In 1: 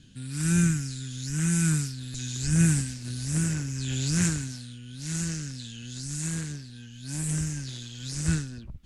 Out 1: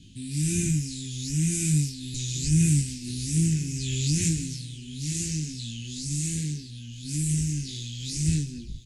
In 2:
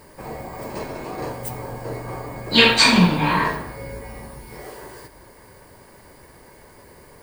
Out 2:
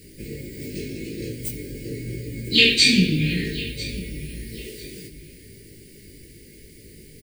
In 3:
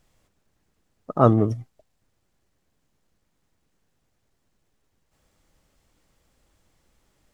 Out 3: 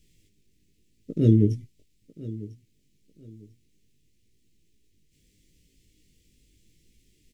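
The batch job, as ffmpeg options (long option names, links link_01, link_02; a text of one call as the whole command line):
ffmpeg -i in.wav -filter_complex "[0:a]flanger=delay=18:depth=2.7:speed=0.88,asplit=2[link_01][link_02];[link_02]acompressor=threshold=-33dB:ratio=6,volume=-2.5dB[link_03];[link_01][link_03]amix=inputs=2:normalize=0,asuperstop=centerf=950:order=8:qfactor=0.53,aecho=1:1:997|1994:0.133|0.0347,volume=2dB" out.wav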